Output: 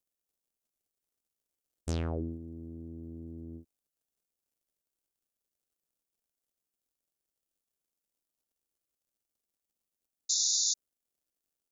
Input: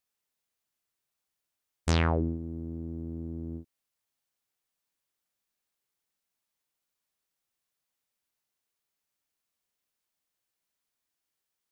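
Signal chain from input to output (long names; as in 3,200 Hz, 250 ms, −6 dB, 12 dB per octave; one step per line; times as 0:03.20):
sound drawn into the spectrogram noise, 0:10.29–0:10.74, 3,500–7,200 Hz −20 dBFS
surface crackle 130 per second −63 dBFS
octave-band graphic EQ 125/1,000/2,000/4,000 Hz −7/−9/−11/−6 dB
level −4 dB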